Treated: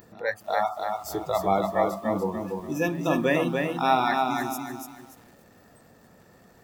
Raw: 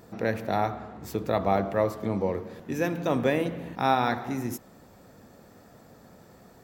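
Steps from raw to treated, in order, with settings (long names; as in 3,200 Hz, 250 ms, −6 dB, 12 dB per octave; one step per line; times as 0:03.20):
hum removal 67.11 Hz, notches 14
noise reduction from a noise print of the clip's start 27 dB
in parallel at +2 dB: upward compression, threshold −30 dBFS
on the sum: hollow resonant body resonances 1,800/2,700 Hz, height 8 dB, ringing for 25 ms
backwards echo 353 ms −22.5 dB
feedback echo at a low word length 290 ms, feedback 35%, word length 8 bits, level −4 dB
level −5 dB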